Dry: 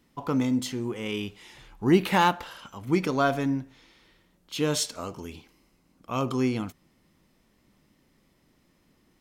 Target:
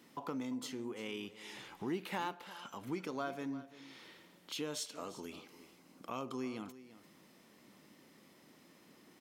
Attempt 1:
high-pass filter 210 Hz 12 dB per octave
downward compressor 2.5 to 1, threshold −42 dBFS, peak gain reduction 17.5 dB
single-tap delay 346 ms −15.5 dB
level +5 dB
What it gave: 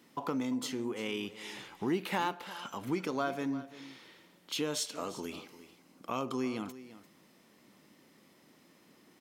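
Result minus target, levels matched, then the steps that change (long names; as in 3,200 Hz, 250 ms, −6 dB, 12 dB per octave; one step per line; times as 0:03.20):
downward compressor: peak gain reduction −6.5 dB
change: downward compressor 2.5 to 1, threshold −52.5 dBFS, peak gain reduction 23.5 dB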